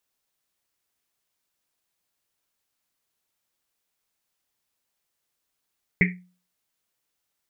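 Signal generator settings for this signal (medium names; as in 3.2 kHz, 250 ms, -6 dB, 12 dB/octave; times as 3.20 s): Risset drum, pitch 180 Hz, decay 0.39 s, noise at 2.1 kHz, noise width 490 Hz, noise 50%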